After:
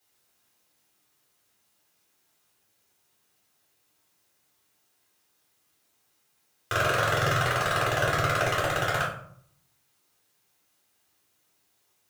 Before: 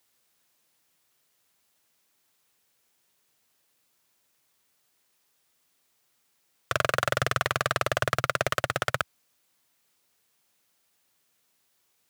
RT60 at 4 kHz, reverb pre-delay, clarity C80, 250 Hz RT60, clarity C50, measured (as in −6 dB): 0.40 s, 3 ms, 9.5 dB, 0.85 s, 5.5 dB